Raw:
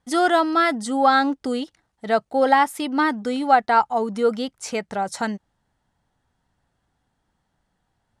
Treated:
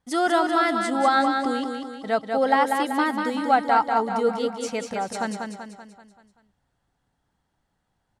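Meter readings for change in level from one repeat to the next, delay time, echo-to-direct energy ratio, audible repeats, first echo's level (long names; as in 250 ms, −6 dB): −6.0 dB, 192 ms, −4.0 dB, 5, −5.0 dB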